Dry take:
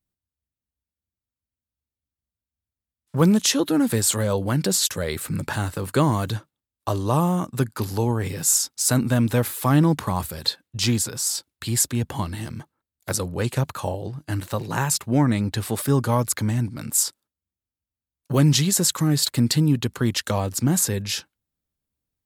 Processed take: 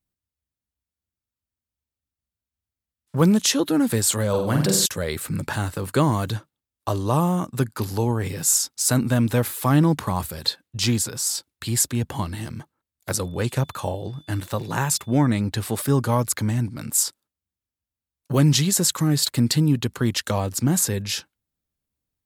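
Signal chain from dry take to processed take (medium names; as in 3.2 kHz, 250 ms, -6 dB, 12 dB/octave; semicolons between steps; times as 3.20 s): 4.29–4.86 s: flutter echo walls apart 8 m, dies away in 0.61 s; 13.23–15.26 s: whistle 3.5 kHz -53 dBFS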